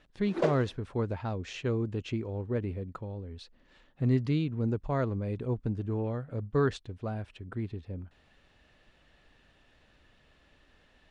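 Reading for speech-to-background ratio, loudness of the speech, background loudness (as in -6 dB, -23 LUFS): 0.0 dB, -33.0 LUFS, -33.0 LUFS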